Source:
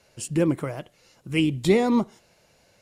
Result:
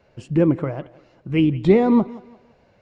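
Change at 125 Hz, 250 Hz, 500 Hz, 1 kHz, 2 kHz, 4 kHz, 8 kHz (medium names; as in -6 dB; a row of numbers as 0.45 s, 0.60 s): +5.5 dB, +5.0 dB, +4.5 dB, +3.0 dB, -1.5 dB, -5.0 dB, under -15 dB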